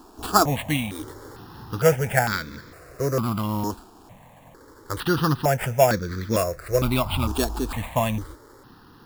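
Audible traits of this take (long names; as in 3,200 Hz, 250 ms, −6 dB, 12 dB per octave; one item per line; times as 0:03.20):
aliases and images of a low sample rate 6,100 Hz, jitter 0%
notches that jump at a steady rate 2.2 Hz 550–2,800 Hz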